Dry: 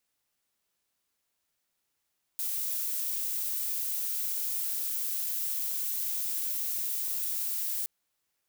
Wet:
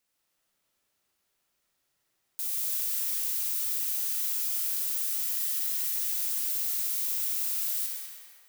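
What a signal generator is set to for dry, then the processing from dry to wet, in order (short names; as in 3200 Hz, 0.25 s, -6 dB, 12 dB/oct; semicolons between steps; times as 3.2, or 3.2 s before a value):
noise violet, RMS -32 dBFS 5.47 s
on a send: multi-head echo 67 ms, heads first and third, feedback 48%, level -11 dB; on the sum: digital reverb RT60 2.7 s, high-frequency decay 0.5×, pre-delay 55 ms, DRR -1.5 dB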